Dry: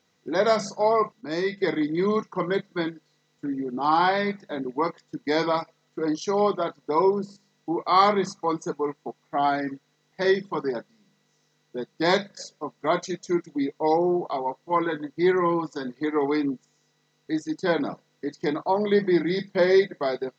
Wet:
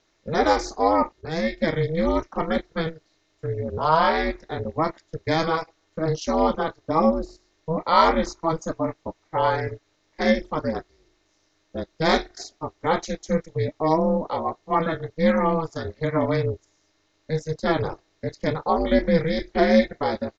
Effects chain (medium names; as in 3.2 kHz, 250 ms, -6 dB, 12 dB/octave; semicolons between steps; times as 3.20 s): resampled via 16 kHz; ring modulator 160 Hz; trim +4.5 dB